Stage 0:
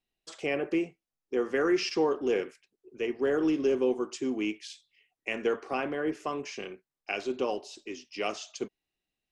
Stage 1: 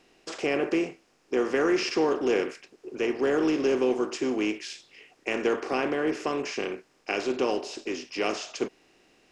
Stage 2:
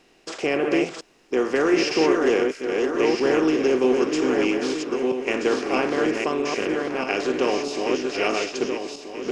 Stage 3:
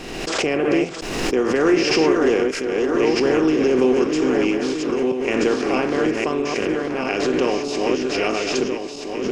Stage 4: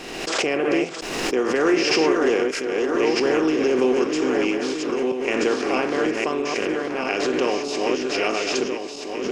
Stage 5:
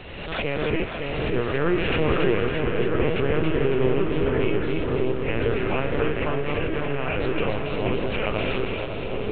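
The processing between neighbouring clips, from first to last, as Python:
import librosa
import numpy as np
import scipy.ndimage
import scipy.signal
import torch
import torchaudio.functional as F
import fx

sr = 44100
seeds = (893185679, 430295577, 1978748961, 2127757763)

y1 = fx.bin_compress(x, sr, power=0.6)
y2 = fx.reverse_delay_fb(y1, sr, ms=640, feedback_pct=53, wet_db=-3.0)
y2 = y2 * 10.0 ** (3.5 / 20.0)
y3 = fx.low_shelf(y2, sr, hz=190.0, db=9.0)
y3 = fx.pre_swell(y3, sr, db_per_s=36.0)
y4 = fx.low_shelf(y3, sr, hz=190.0, db=-11.5)
y5 = fx.lpc_vocoder(y4, sr, seeds[0], excitation='pitch_kept', order=10)
y5 = fx.echo_split(y5, sr, split_hz=960.0, low_ms=559, high_ms=278, feedback_pct=52, wet_db=-4)
y5 = y5 * 10.0 ** (-3.5 / 20.0)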